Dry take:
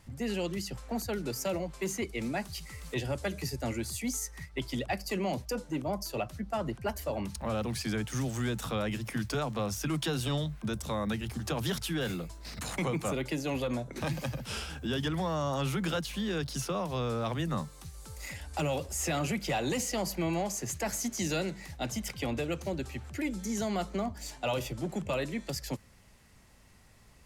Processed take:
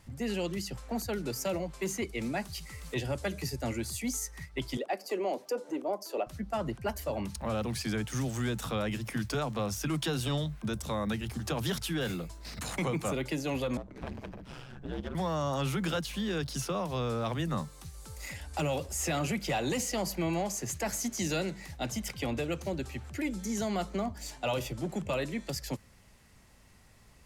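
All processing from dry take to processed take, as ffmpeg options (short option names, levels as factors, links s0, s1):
-filter_complex "[0:a]asettb=1/sr,asplit=3[s0][s1][s2];[s0]atrim=end=4.774[s3];[s1]atrim=start=4.77:end=6.27,asetpts=PTS-STARTPTS,afade=t=in:d=0.004:c=qsin,afade=t=out:st=1.496:d=0.004:c=qsin,highpass=f=350:w=0.5412,highpass=f=350:w=1.3066,tiltshelf=f=840:g=7,acompressor=mode=upward:threshold=0.0141:ratio=2.5:attack=3.2:release=140:knee=2.83:detection=peak[s4];[s2]atrim=start=6.266[s5];[s3][s4]acrossfade=d=0.004:c1=hsin:c2=qsin[s6];[s6][s5]acrossfade=d=0.004:c1=qsin:c2=hsin,asettb=1/sr,asplit=3[s7][s8][s9];[s7]atrim=end=13.774[s10];[s8]atrim=start=13.77:end=15.15,asetpts=PTS-STARTPTS,afade=t=in:d=0.004:c=qsin,afade=t=out:st=1.376:d=0.004:c=qsin,lowpass=f=1200:p=1,aeval=exprs='clip(val(0),-1,0.0075)':c=same,aeval=exprs='val(0)*sin(2*PI*64*n/s)':c=same[s11];[s9]atrim=start=15.146[s12];[s10][s11]acrossfade=d=0.004:c1=hsin:c2=qsin[s13];[s13][s12]acrossfade=d=0.004:c1=qsin:c2=hsin"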